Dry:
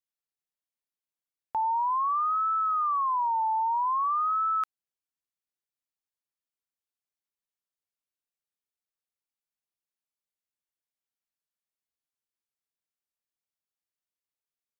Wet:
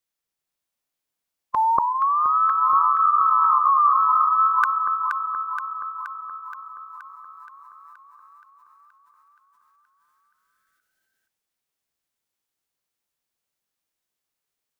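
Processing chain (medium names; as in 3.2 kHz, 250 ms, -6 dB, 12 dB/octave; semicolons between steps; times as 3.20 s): echo whose repeats swap between lows and highs 237 ms, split 940 Hz, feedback 79%, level -3 dB; formant shift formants +3 st; trim +8 dB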